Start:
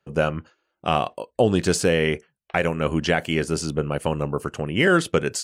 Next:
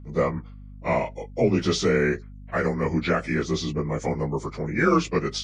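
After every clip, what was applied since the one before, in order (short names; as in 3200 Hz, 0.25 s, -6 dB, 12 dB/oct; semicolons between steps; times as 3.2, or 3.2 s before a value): inharmonic rescaling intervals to 89%; hum 50 Hz, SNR 17 dB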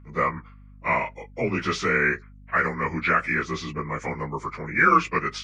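band shelf 1600 Hz +12.5 dB; gain -5.5 dB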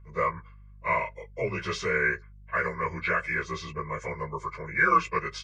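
comb 1.9 ms, depth 98%; gain -7 dB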